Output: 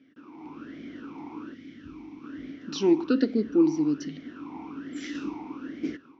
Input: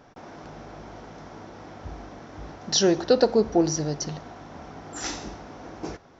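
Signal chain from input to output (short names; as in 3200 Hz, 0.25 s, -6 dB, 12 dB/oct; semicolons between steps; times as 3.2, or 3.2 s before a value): AGC gain up to 8.5 dB; 1.54–2.24 bell 720 Hz -12.5 dB 2.2 oct; 4.03–5.15 compressor, threshold -25 dBFS, peak gain reduction 6.5 dB; vowel sweep i-u 1.2 Hz; gain +5 dB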